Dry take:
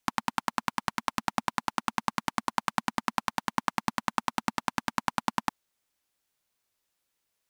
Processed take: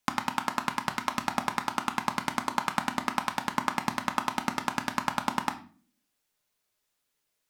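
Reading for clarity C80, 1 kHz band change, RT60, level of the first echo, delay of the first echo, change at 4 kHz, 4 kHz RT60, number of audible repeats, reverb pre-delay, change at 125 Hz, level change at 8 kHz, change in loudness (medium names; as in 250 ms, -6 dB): 17.5 dB, +1.0 dB, 0.40 s, no echo, no echo, +1.0 dB, 0.35 s, no echo, 5 ms, +1.0 dB, +1.0 dB, +1.0 dB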